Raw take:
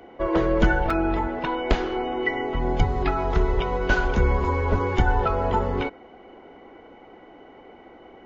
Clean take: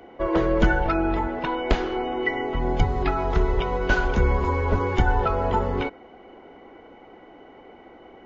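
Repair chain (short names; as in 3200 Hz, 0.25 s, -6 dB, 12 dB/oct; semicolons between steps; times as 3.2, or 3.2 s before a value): interpolate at 0.9, 4 ms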